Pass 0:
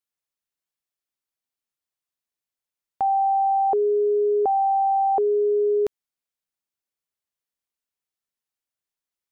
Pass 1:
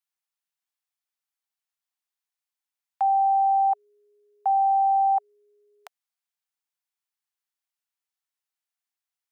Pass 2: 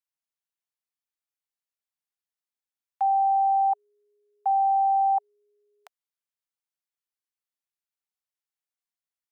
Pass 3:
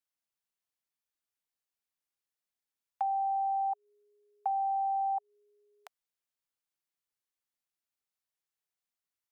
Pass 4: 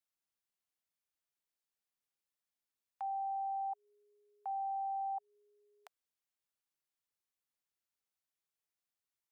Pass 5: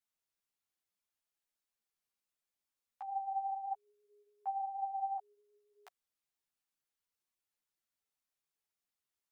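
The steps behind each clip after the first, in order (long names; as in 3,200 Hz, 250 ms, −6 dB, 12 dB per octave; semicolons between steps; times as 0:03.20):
elliptic high-pass filter 720 Hz, stop band 40 dB
dynamic equaliser 870 Hz, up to +6 dB, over −36 dBFS, Q 2.2; level −6 dB
downward compressor, threshold −30 dBFS, peak gain reduction 9 dB
brickwall limiter −32 dBFS, peak gain reduction 10 dB; level −2.5 dB
string-ensemble chorus; level +3 dB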